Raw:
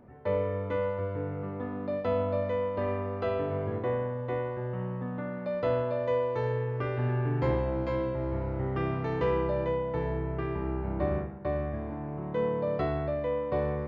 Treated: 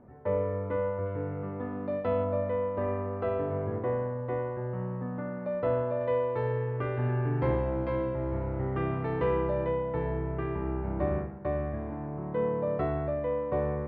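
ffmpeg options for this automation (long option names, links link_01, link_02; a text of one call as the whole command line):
ffmpeg -i in.wav -af "asetnsamples=nb_out_samples=441:pad=0,asendcmd='1.06 lowpass f 2600;2.24 lowpass f 1800;6.01 lowpass f 2600;12.06 lowpass f 2000',lowpass=1700" out.wav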